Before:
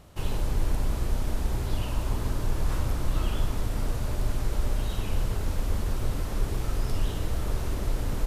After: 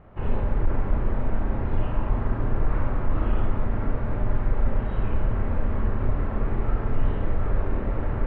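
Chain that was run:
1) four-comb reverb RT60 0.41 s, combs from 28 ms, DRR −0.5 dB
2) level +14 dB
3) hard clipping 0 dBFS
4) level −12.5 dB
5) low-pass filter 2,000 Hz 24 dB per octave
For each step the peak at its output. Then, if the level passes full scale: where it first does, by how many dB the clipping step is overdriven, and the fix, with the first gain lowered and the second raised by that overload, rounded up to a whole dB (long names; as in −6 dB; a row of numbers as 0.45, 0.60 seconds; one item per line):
−9.5, +4.5, 0.0, −12.5, −12.5 dBFS
step 2, 4.5 dB
step 2 +9 dB, step 4 −7.5 dB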